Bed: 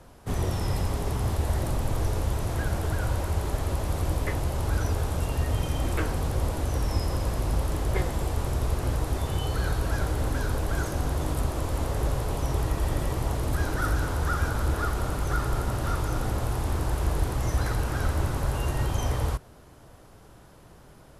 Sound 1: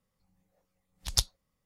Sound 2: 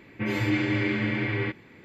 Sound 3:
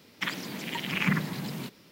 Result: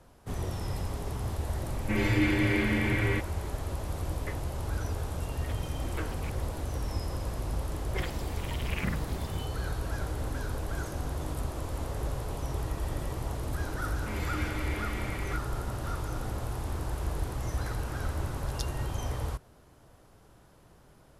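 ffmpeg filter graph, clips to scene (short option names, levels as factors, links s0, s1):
-filter_complex "[2:a]asplit=2[s0][s1];[3:a]asplit=2[s2][s3];[0:a]volume=0.473[s4];[s2]aeval=exprs='val(0)*pow(10,-20*if(lt(mod(-6.5*n/s,1),2*abs(-6.5)/1000),1-mod(-6.5*n/s,1)/(2*abs(-6.5)/1000),(mod(-6.5*n/s,1)-2*abs(-6.5)/1000)/(1-2*abs(-6.5)/1000))/20)':c=same[s5];[s1]crystalizer=i=2.5:c=0[s6];[s0]atrim=end=1.84,asetpts=PTS-STARTPTS,volume=0.891,afade=t=in:d=0.004:c=hsin,afade=t=out:st=1.836:d=0.004:c=hsin,adelay=1690[s7];[s5]atrim=end=1.91,asetpts=PTS-STARTPTS,volume=0.2,afade=t=in:d=0.004:c=hsin,afade=t=out:st=1.906:d=0.004:c=hsin,adelay=5220[s8];[s3]atrim=end=1.91,asetpts=PTS-STARTPTS,volume=0.376,afade=t=in:d=0.004:c=hsin,afade=t=out:st=1.906:d=0.004:c=hsin,adelay=7760[s9];[s6]atrim=end=1.84,asetpts=PTS-STARTPTS,volume=0.224,afade=t=in:d=0.004:c=hsin,afade=t=out:st=1.836:d=0.004:c=hsin,adelay=13860[s10];[1:a]atrim=end=1.65,asetpts=PTS-STARTPTS,volume=0.211,afade=t=in:d=0.004:c=hsin,afade=t=out:st=1.646:d=0.004:c=hsin,adelay=17420[s11];[s4][s7][s8][s9][s10][s11]amix=inputs=6:normalize=0"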